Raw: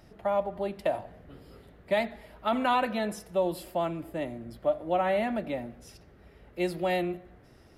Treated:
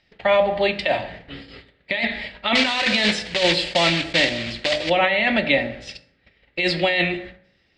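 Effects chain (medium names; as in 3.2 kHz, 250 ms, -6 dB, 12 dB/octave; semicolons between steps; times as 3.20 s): 2.55–4.90 s: block-companded coder 3-bit; gate -49 dBFS, range -22 dB; steep low-pass 8.3 kHz 48 dB/octave; high-order bell 2.9 kHz +16 dB; hum notches 50/100/150/200/250/300/350 Hz; compressor with a negative ratio -26 dBFS, ratio -1; reverberation RT60 0.70 s, pre-delay 3 ms, DRR 9 dB; trim +7 dB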